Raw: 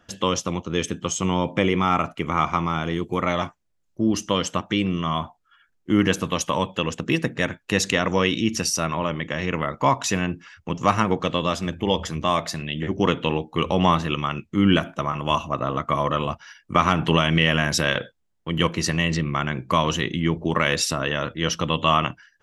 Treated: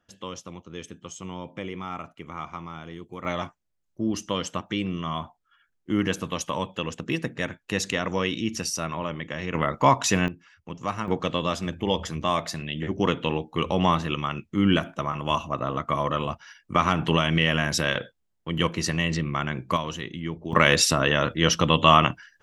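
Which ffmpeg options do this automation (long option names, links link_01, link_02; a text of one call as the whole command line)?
ffmpeg -i in.wav -af "asetnsamples=nb_out_samples=441:pad=0,asendcmd='3.25 volume volume -5.5dB;9.55 volume volume 1dB;10.28 volume volume -10dB;11.08 volume volume -3dB;19.77 volume volume -9.5dB;20.53 volume volume 3dB',volume=-14dB" out.wav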